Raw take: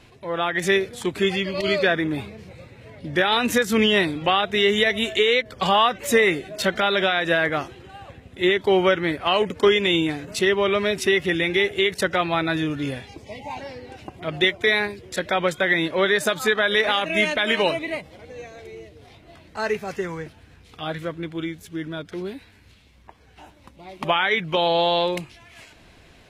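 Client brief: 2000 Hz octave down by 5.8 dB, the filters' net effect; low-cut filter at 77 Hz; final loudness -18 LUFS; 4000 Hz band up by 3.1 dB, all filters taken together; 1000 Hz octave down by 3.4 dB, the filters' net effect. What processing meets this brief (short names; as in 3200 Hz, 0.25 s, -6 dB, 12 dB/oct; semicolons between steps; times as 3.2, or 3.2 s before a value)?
HPF 77 Hz; bell 1000 Hz -3 dB; bell 2000 Hz -8 dB; bell 4000 Hz +7 dB; gain +4 dB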